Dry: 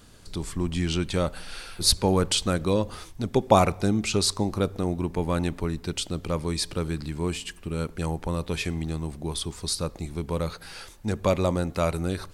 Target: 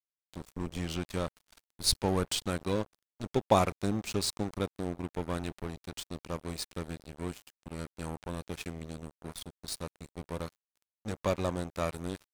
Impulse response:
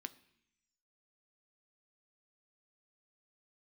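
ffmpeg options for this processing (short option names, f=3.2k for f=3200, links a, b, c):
-filter_complex "[0:a]asettb=1/sr,asplit=3[a][b][c];[a]atrim=end=5.374[d];[b]atrim=start=5.37:end=5.98,asetpts=PTS-STARTPTS,afade=t=in:d=0.004:c=qsin,afade=t=out:st=0.606:d=0.004:c=qsin,bandreject=f=60:t=h:w=6,bandreject=f=120:t=h:w=6,bandreject=f=180:t=h:w=6,bandreject=f=240:t=h:w=6,bandreject=f=300:t=h:w=6,bandreject=f=360:t=h:w=6[e];[c]atrim=start=5.976[f];[d][e]acrossfade=d=0.004:c1=hsin:c2=qsin[g];[g][f]acrossfade=d=0.004:c1=qsin:c2=hsin,aeval=exprs='sgn(val(0))*max(abs(val(0))-0.0299,0)':c=same,volume=-5dB"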